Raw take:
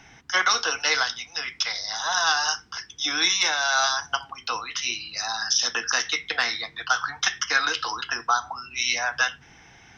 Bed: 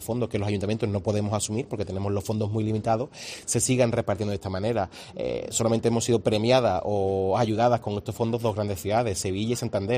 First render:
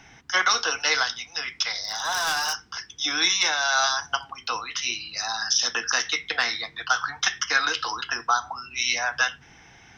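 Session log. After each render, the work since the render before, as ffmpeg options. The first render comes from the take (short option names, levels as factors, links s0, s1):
-filter_complex "[0:a]asettb=1/sr,asplit=3[s0][s1][s2];[s0]atrim=end=1.834[s3];[s1]atrim=start=1.83:end=2.75,asetpts=PTS-STARTPTS,afade=t=in:d=0.004:c=qsin,afade=t=out:st=0.916:d=0.004:c=qsin,asoftclip=type=hard:threshold=0.0794[s4];[s2]atrim=start=2.746[s5];[s3][s4]acrossfade=d=0.004:c1=hsin:c2=qsin[s6];[s6][s5]acrossfade=d=0.004:c1=qsin:c2=hsin"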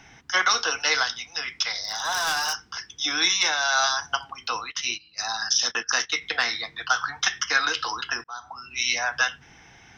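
-filter_complex "[0:a]asplit=3[s0][s1][s2];[s0]afade=t=out:st=4.7:d=0.02[s3];[s1]agate=range=0.141:threshold=0.0251:ratio=16:release=100:detection=peak,afade=t=in:st=4.7:d=0.02,afade=t=out:st=6.2:d=0.02[s4];[s2]afade=t=in:st=6.2:d=0.02[s5];[s3][s4][s5]amix=inputs=3:normalize=0,asplit=2[s6][s7];[s6]atrim=end=8.24,asetpts=PTS-STARTPTS,afade=t=out:st=8.236:d=0.004:c=hsin[s8];[s7]atrim=start=8.24,asetpts=PTS-STARTPTS,afade=t=in:d=0.53[s9];[s8][s9]concat=n=2:v=0:a=1"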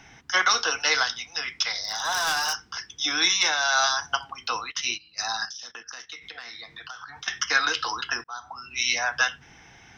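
-filter_complex "[0:a]asettb=1/sr,asplit=3[s0][s1][s2];[s0]atrim=end=5.454[s3];[s1]atrim=start=5.45:end=7.28,asetpts=PTS-STARTPTS,afade=t=in:d=0.004:c=qsin,afade=t=out:st=1.826:d=0.004:c=qsin,acompressor=threshold=0.0141:ratio=6:attack=3.2:release=140:knee=1:detection=peak[s4];[s2]atrim=start=7.276[s5];[s3][s4]acrossfade=d=0.004:c1=hsin:c2=qsin[s6];[s6][s5]acrossfade=d=0.004:c1=qsin:c2=hsin"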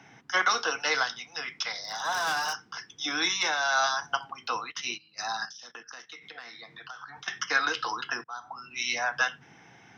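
-af "highpass=f=120:w=0.5412,highpass=f=120:w=1.3066,highshelf=f=2100:g=-8.5"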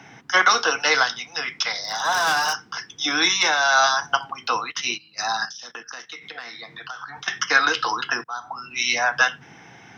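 -af "volume=2.51"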